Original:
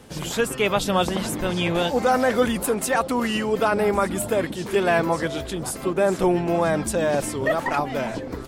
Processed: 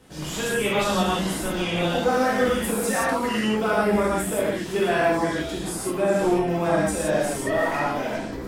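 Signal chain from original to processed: gated-style reverb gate 200 ms flat, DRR -7.5 dB; trim -8.5 dB

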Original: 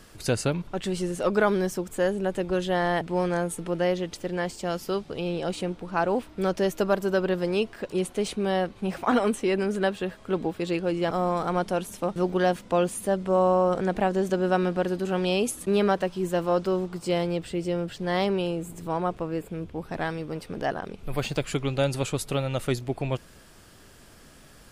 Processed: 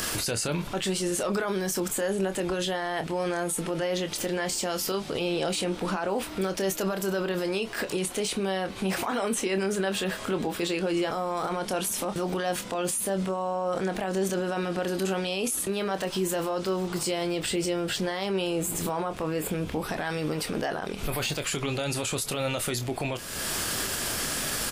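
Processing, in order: tilt EQ +2 dB/octave; upward compressor, threshold -25 dBFS; peak limiter -29.5 dBFS, peak gain reduction 19 dB; doubling 26 ms -9 dB; trim +9 dB

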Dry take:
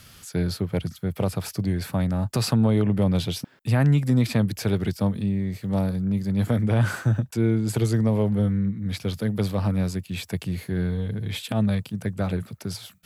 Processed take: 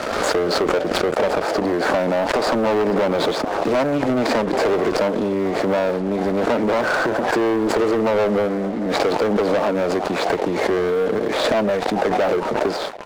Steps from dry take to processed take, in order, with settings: median filter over 15 samples; peaking EQ 590 Hz +7 dB 0.68 oct; reverberation, pre-delay 3 ms, DRR 19 dB; sine folder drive 6 dB, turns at -8.5 dBFS; compression, threshold -24 dBFS, peak gain reduction 12.5 dB; high-pass 320 Hz 24 dB/octave; waveshaping leveller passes 2; low-pass 6.9 kHz 12 dB/octave; tilt shelf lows +4 dB, about 1.3 kHz; frequency-shifting echo 441 ms, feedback 53%, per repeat +140 Hz, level -20 dB; waveshaping leveller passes 3; swell ahead of each attack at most 26 dB/s; trim -3.5 dB

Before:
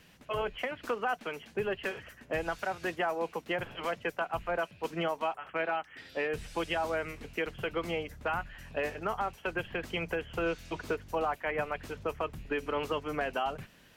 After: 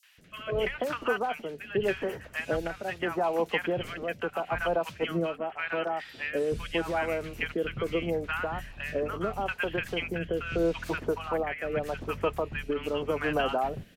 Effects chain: three bands offset in time highs, mids, lows 30/180 ms, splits 1.1/5.7 kHz; rotary cabinet horn 0.8 Hz; trim +7 dB

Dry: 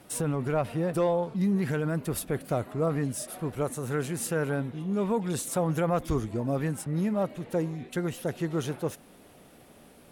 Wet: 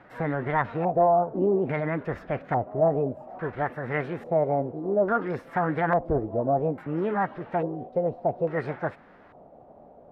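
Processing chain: formant shift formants +6 st; LFO low-pass square 0.59 Hz 680–1700 Hz

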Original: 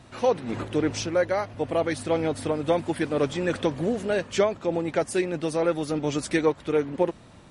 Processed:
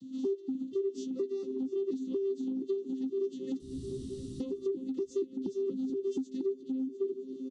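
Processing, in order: vocoder on a broken chord bare fifth, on C4, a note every 237 ms; 3.60–4.40 s: room tone; 5.46–5.90 s: resonant low shelf 250 Hz +7 dB, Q 3; inverse Chebyshev band-stop 550–2400 Hz, stop band 40 dB; doubling 15 ms -7 dB; feedback delay 702 ms, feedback 58%, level -18.5 dB; compression 6:1, threshold -42 dBFS, peak gain reduction 18 dB; FFT filter 230 Hz 0 dB, 2 kHz +14 dB, 3.9 kHz -3 dB; trim +8 dB

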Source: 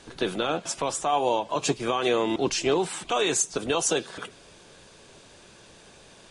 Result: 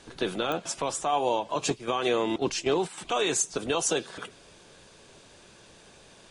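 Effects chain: 1.70–2.98 s: gate -27 dBFS, range -8 dB; clicks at 0.52 s, -15 dBFS; trim -2 dB

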